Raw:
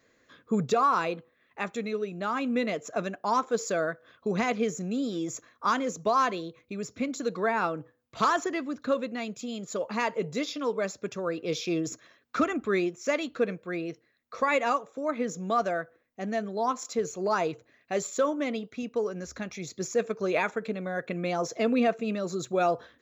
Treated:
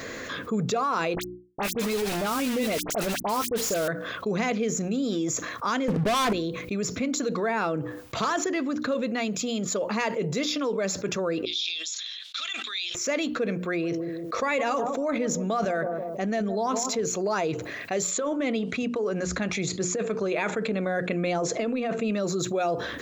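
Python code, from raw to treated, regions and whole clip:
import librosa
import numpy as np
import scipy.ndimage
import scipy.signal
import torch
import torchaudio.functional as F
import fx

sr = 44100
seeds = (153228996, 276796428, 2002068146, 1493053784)

y = fx.chain(x, sr, fx.peak_eq(hz=1800.0, db=-8.5, octaves=0.26),
    fx.quant_dither(seeds[0], bits=6, dither='none'),
    fx.dispersion(late='highs', ms=54.0, hz=2400.0), at=(1.15, 3.88))
y = fx.chain(y, sr, fx.lowpass(hz=1600.0, slope=24),
    fx.peak_eq(hz=110.0, db=9.5, octaves=1.1),
    fx.leveller(passes=5), at=(5.88, 6.33))
y = fx.chain(y, sr, fx.ladder_bandpass(hz=3800.0, resonance_pct=75),
    fx.sustainer(db_per_s=81.0), at=(11.45, 12.95))
y = fx.chain(y, sr, fx.echo_bbd(ms=161, stages=1024, feedback_pct=33, wet_db=-13),
    fx.sustainer(db_per_s=83.0), at=(13.58, 17.01))
y = fx.chain(y, sr, fx.peak_eq(hz=5600.0, db=-8.0, octaves=0.37),
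    fx.resample_bad(factor=2, down='none', up='filtered'),
    fx.over_compress(threshold_db=-29.0, ratio=-1.0), at=(18.11, 22.11))
y = fx.hum_notches(y, sr, base_hz=60, count=6)
y = fx.dynamic_eq(y, sr, hz=1100.0, q=1.4, threshold_db=-38.0, ratio=4.0, max_db=-5)
y = fx.env_flatten(y, sr, amount_pct=70)
y = y * 10.0 ** (-5.0 / 20.0)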